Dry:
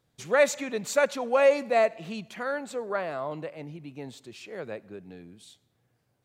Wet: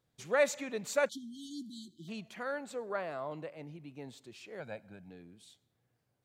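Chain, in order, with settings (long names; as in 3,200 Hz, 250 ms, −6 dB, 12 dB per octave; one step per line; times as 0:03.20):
0:01.09–0:02.08: time-frequency box erased 380–3,000 Hz
0:04.60–0:05.10: comb filter 1.3 ms, depth 72%
level −6.5 dB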